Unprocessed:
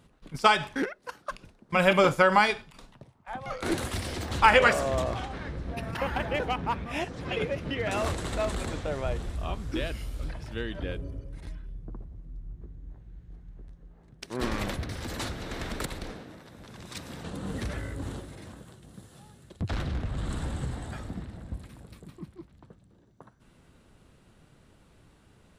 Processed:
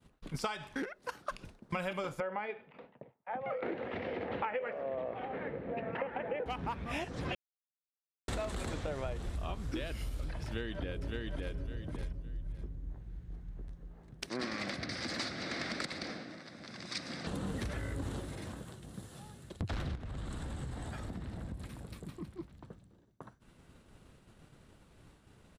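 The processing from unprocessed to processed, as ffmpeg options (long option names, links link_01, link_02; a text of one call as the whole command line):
ffmpeg -i in.wav -filter_complex "[0:a]asettb=1/sr,asplit=3[link_01][link_02][link_03];[link_01]atrim=end=2.204[link_04];[link_02]atrim=start=2.2:end=6.46,asetpts=PTS-STARTPTS,afade=type=in:duration=0.004:curve=qsin,afade=type=out:start_time=4.256:duration=0.004:curve=qsin,highpass=230,equalizer=frequency=330:width_type=q:width=4:gain=-4,equalizer=frequency=480:width_type=q:width=4:gain=8,equalizer=frequency=1100:width_type=q:width=4:gain=-7,equalizer=frequency=1500:width_type=q:width=4:gain=-5,lowpass=frequency=2300:width=0.5412,lowpass=frequency=2300:width=1.3066[link_05];[link_03]atrim=start=6.456[link_06];[link_04][link_05]acrossfade=duration=0.004:curve1=hsin:curve2=qsin[link_07];[link_07][link_06]acrossfade=duration=0.004:curve1=qsin:curve2=hsin,asplit=2[link_08][link_09];[link_09]afade=type=in:start_time=10.45:duration=0.01,afade=type=out:start_time=11.56:duration=0.01,aecho=0:1:560|1120|1680:0.749894|0.149979|0.0299958[link_10];[link_08][link_10]amix=inputs=2:normalize=0,asettb=1/sr,asplit=3[link_11][link_12][link_13];[link_11]atrim=end=14.294[link_14];[link_12]atrim=start=14.29:end=17.27,asetpts=PTS-STARTPTS,afade=type=in:duration=0.004:curve=qsin,afade=type=out:start_time=2.976:duration=0.004:curve=qsin,highpass=190,equalizer=frequency=430:width_type=q:width=4:gain=-8,equalizer=frequency=930:width_type=q:width=4:gain=-8,equalizer=frequency=2100:width_type=q:width=4:gain=5,equalizer=frequency=3000:width_type=q:width=4:gain=-5,equalizer=frequency=4800:width_type=q:width=4:gain=9,equalizer=frequency=7200:width_type=q:width=4:gain=-6,lowpass=frequency=8000:width=0.5412,lowpass=frequency=8000:width=1.3066[link_15];[link_13]atrim=start=17.266[link_16];[link_14][link_15]acrossfade=duration=0.004:curve1=hsin:curve2=qsin[link_17];[link_17][link_16]acrossfade=duration=0.004:curve1=qsin:curve2=hsin,asettb=1/sr,asplit=3[link_18][link_19][link_20];[link_18]atrim=end=19.954[link_21];[link_19]atrim=start=19.95:end=22.25,asetpts=PTS-STARTPTS,afade=type=in:duration=0.004:curve=qsin,afade=type=out:start_time=2.296:duration=0.004:curve=qsin,acompressor=threshold=-38dB:ratio=12:attack=3.2:release=140:knee=1:detection=peak[link_22];[link_20]atrim=start=22.246[link_23];[link_21][link_22]acrossfade=duration=0.004:curve1=hsin:curve2=qsin[link_24];[link_24][link_23]acrossfade=duration=0.004:curve1=qsin:curve2=hsin,asplit=3[link_25][link_26][link_27];[link_25]atrim=end=7.35,asetpts=PTS-STARTPTS,afade=type=out:start_time=7.346:duration=0.004:curve=hsin[link_28];[link_26]atrim=start=7.35:end=8.28,asetpts=PTS-STARTPTS,volume=0[link_29];[link_27]atrim=start=8.28,asetpts=PTS-STARTPTS,afade=type=in:duration=0.004:curve=hsin[link_30];[link_28][link_29][link_30]concat=n=3:v=0:a=1,agate=range=-33dB:threshold=-54dB:ratio=3:detection=peak,acompressor=threshold=-35dB:ratio=12,volume=1.5dB" out.wav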